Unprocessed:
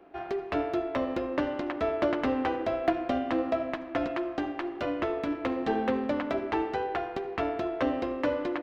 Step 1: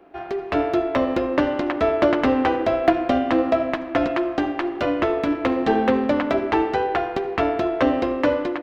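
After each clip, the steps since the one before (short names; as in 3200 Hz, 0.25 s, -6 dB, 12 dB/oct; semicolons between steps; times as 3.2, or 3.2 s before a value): AGC gain up to 5 dB; gain +4 dB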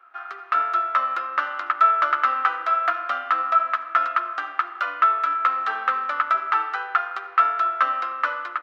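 resonant high-pass 1300 Hz, resonance Q 13; gain -6 dB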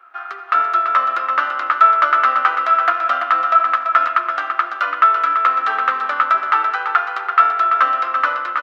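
feedback echo 0.336 s, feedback 31%, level -7.5 dB; gain +5.5 dB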